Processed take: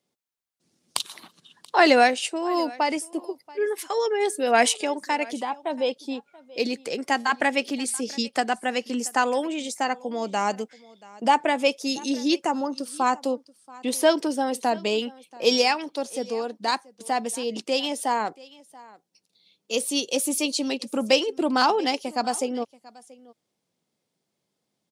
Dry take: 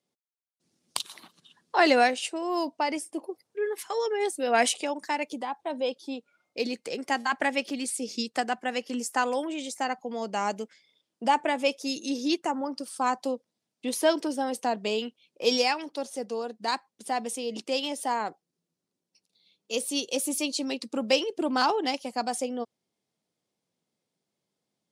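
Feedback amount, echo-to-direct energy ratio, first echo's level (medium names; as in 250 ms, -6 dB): no regular repeats, -22.0 dB, -22.0 dB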